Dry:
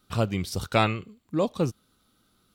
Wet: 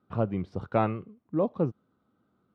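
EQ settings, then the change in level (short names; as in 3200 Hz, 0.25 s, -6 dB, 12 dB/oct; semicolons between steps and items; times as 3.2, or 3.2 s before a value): HPF 110 Hz 12 dB/oct; LPF 1100 Hz 12 dB/oct; -1.0 dB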